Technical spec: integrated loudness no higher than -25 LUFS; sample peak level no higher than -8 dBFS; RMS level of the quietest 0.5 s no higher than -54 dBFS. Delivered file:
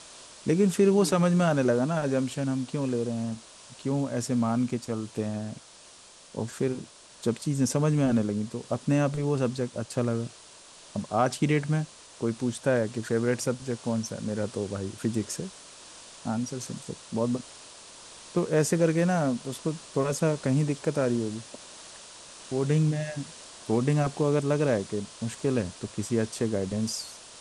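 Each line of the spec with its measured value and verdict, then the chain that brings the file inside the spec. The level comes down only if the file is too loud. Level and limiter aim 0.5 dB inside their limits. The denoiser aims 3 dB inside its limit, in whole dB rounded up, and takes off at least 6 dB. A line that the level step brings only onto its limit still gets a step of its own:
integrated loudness -28.0 LUFS: pass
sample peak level -11.0 dBFS: pass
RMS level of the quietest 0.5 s -52 dBFS: fail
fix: noise reduction 6 dB, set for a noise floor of -52 dBFS

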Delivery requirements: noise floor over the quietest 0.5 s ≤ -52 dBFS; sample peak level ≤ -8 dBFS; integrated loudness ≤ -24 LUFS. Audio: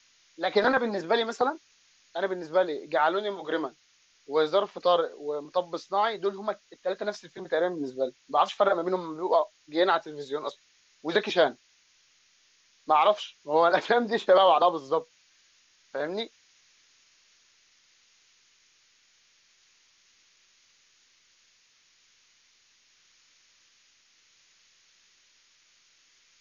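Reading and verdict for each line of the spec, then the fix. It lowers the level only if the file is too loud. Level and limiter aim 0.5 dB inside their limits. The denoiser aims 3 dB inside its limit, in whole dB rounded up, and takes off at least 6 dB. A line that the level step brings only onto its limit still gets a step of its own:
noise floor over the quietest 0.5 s -64 dBFS: pass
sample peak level -9.0 dBFS: pass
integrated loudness -27.0 LUFS: pass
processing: none needed

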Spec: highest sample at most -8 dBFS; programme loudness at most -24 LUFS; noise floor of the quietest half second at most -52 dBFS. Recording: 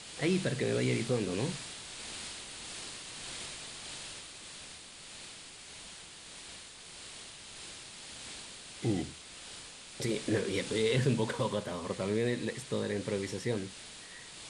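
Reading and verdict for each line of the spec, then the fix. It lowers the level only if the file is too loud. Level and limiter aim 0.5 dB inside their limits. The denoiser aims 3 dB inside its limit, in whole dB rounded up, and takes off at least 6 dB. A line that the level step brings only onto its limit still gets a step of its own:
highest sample -16.5 dBFS: pass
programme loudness -36.0 LUFS: pass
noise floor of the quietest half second -49 dBFS: fail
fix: noise reduction 6 dB, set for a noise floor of -49 dBFS

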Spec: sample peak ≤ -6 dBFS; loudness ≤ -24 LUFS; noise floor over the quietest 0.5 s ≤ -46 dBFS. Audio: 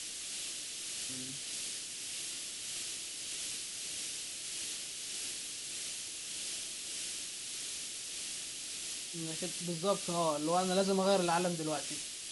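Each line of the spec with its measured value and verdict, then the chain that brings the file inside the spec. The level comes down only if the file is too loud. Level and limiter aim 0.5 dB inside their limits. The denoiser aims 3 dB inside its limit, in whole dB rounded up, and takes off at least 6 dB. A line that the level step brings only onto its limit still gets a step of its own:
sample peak -16.5 dBFS: pass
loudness -36.0 LUFS: pass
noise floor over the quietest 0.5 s -42 dBFS: fail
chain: noise reduction 7 dB, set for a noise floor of -42 dBFS

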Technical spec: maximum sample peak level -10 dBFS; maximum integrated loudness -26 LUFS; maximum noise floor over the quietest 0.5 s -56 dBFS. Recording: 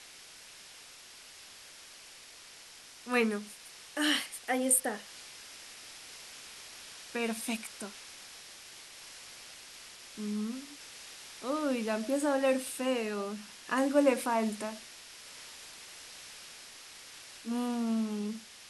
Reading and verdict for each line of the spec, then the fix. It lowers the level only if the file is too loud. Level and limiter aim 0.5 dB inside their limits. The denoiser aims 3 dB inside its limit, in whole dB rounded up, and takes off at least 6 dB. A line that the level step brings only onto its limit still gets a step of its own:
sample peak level -12.0 dBFS: pass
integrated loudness -32.0 LUFS: pass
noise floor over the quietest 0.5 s -52 dBFS: fail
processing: noise reduction 7 dB, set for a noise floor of -52 dBFS

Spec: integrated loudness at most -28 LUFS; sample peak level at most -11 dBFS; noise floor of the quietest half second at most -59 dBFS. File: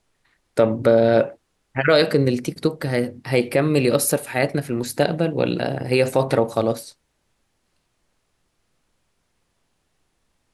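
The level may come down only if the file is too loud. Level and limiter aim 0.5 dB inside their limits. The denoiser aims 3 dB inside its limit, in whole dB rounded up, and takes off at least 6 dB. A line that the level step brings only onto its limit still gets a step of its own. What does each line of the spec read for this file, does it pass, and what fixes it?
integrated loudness -20.5 LUFS: fail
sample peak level -5.0 dBFS: fail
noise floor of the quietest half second -69 dBFS: pass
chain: trim -8 dB

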